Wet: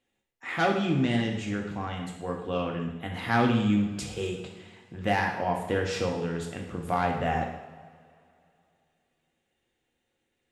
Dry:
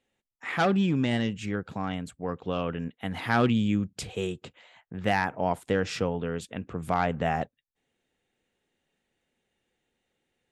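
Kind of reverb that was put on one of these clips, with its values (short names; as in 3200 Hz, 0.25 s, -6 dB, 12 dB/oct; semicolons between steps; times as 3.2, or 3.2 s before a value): two-slope reverb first 0.8 s, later 2.8 s, from -18 dB, DRR 0.5 dB; gain -2.5 dB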